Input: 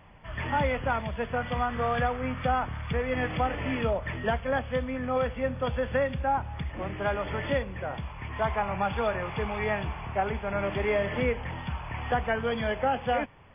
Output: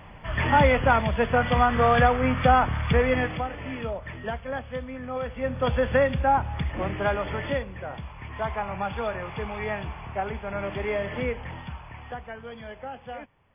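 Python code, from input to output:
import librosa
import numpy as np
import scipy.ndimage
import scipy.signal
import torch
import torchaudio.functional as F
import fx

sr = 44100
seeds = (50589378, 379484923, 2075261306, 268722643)

y = fx.gain(x, sr, db=fx.line((3.06, 8.0), (3.47, -4.0), (5.21, -4.0), (5.69, 5.5), (6.83, 5.5), (7.74, -1.5), (11.55, -1.5), (12.25, -11.0)))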